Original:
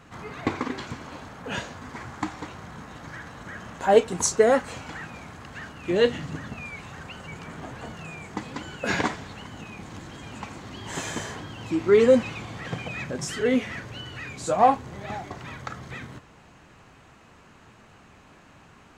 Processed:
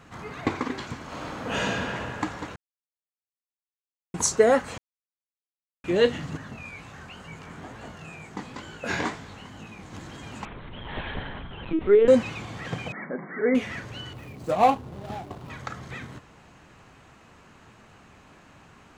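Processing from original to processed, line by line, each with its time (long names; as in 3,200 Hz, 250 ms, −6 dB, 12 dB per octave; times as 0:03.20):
0:01.04–0:01.80: thrown reverb, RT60 2.8 s, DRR −6 dB
0:02.56–0:04.14: silence
0:04.78–0:05.84: silence
0:06.37–0:09.93: chorus effect 2.1 Hz, delay 18 ms, depth 5.8 ms
0:10.45–0:12.08: linear-prediction vocoder at 8 kHz pitch kept
0:12.92–0:13.55: linear-phase brick-wall band-pass 160–2,300 Hz
0:14.13–0:15.50: running median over 25 samples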